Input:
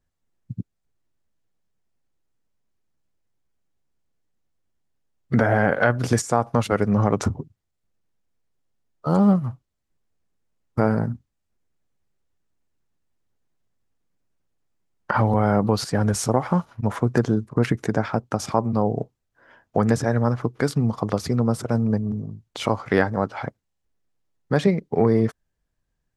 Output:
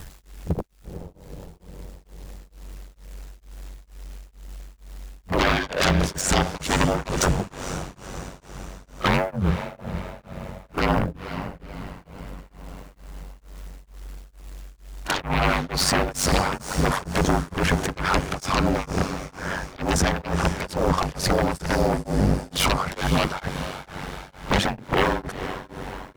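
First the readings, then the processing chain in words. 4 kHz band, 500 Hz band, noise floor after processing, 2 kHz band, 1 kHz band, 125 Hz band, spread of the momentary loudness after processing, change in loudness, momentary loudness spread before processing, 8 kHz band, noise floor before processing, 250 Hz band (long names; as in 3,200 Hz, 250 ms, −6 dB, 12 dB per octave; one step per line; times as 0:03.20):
+10.5 dB, −2.5 dB, −53 dBFS, +3.5 dB, +1.5 dB, −2.5 dB, 22 LU, −1.5 dB, 12 LU, +6.5 dB, −77 dBFS, −4.0 dB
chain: mu-law and A-law mismatch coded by mu
downward compressor 3 to 1, threshold −26 dBFS, peak gain reduction 10.5 dB
sine wavefolder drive 19 dB, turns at −10 dBFS
on a send: feedback delay with all-pass diffusion 476 ms, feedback 53%, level −10 dB
on the sum: upward compression, threshold −25 dBFS
ring modulation 47 Hz
echo ahead of the sound 35 ms −16 dB
tremolo along a rectified sine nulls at 2.2 Hz
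level −3 dB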